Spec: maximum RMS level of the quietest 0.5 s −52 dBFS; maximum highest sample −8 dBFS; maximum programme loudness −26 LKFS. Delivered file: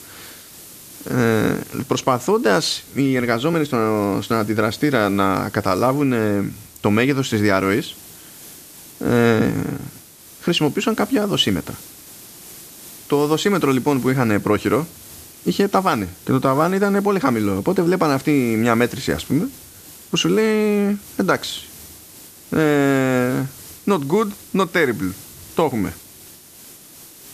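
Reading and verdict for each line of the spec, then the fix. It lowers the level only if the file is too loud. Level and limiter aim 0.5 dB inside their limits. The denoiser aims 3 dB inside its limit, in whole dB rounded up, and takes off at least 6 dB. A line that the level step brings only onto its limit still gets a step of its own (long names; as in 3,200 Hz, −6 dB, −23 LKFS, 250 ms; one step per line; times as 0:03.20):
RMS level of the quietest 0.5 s −43 dBFS: out of spec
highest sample −3.5 dBFS: out of spec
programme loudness −19.5 LKFS: out of spec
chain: broadband denoise 6 dB, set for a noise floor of −43 dBFS
level −7 dB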